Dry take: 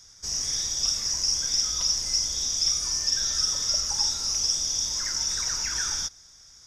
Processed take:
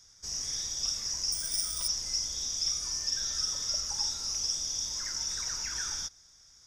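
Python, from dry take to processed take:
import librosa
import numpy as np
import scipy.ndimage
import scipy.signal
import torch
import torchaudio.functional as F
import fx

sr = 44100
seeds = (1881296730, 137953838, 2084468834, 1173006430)

y = fx.resample_bad(x, sr, factor=3, down='none', up='hold', at=(1.32, 1.88))
y = F.gain(torch.from_numpy(y), -6.5).numpy()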